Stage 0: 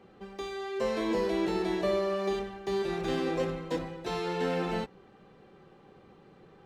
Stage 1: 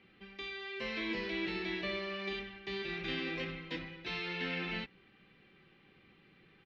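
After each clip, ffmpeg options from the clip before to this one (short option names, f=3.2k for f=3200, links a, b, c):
-af "firequalizer=gain_entry='entry(310,0);entry(450,-7);entry(810,-7);entry(2200,14);entry(5200,2);entry(7500,-18)':delay=0.05:min_phase=1,volume=-7.5dB"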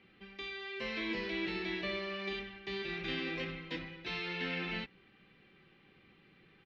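-af anull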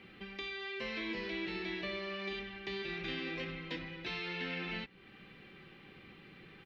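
-af "acompressor=threshold=-53dB:ratio=2,volume=8dB"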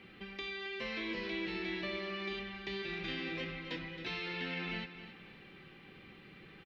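-af "aecho=1:1:270|540|810|1080:0.251|0.0879|0.0308|0.0108"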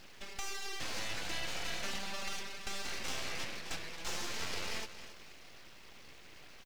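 -af "crystalizer=i=2.5:c=0,aeval=exprs='abs(val(0))':c=same,volume=1dB"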